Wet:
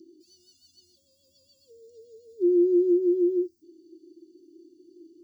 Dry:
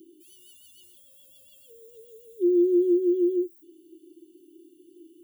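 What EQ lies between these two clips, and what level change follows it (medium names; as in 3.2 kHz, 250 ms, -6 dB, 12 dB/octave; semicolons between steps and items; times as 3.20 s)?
FFT filter 930 Hz 0 dB, 3.2 kHz -17 dB, 4.7 kHz +13 dB, 10 kHz -19 dB; 0.0 dB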